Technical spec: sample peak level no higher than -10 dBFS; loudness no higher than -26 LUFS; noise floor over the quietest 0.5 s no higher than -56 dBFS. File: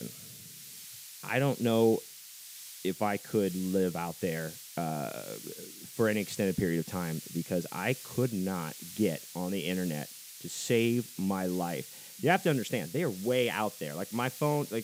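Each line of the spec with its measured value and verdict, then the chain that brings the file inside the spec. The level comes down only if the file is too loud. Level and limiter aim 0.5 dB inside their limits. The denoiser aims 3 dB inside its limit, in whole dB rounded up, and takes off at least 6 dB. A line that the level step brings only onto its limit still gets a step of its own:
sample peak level -13.0 dBFS: OK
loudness -31.5 LUFS: OK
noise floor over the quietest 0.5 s -48 dBFS: fail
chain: denoiser 11 dB, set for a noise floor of -48 dBFS

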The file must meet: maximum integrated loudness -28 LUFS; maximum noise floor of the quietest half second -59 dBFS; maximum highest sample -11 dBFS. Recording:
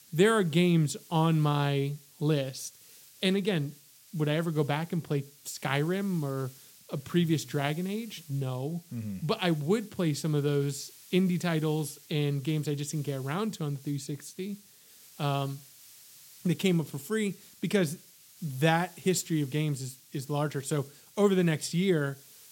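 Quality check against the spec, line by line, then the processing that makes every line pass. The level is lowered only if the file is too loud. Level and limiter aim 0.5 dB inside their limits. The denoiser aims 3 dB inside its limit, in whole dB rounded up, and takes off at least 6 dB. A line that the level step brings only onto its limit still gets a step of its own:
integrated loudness -30.0 LUFS: OK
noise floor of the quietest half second -56 dBFS: fail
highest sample -10.0 dBFS: fail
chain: denoiser 6 dB, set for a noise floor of -56 dBFS; limiter -11.5 dBFS

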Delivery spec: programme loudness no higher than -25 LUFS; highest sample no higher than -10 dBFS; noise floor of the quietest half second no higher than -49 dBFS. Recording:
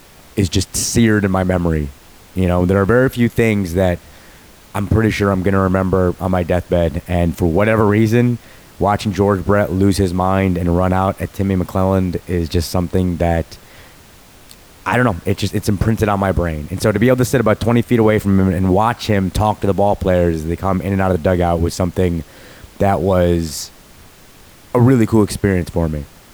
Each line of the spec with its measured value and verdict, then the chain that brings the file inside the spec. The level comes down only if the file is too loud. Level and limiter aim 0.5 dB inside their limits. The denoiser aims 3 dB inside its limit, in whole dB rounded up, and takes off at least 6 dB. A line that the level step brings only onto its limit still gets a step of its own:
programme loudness -16.5 LUFS: fail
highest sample -2.5 dBFS: fail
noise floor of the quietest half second -43 dBFS: fail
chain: gain -9 dB

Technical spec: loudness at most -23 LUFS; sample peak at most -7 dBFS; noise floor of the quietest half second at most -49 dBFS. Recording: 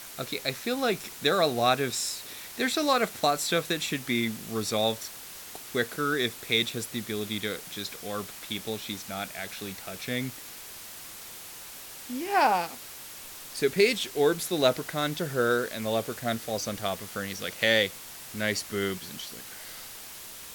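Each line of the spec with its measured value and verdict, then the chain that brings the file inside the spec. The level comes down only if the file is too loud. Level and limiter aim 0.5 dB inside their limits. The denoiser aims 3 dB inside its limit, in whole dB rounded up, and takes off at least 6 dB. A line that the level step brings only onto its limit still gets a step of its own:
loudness -28.5 LUFS: OK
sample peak -8.0 dBFS: OK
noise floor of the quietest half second -44 dBFS: fail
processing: denoiser 8 dB, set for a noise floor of -44 dBFS

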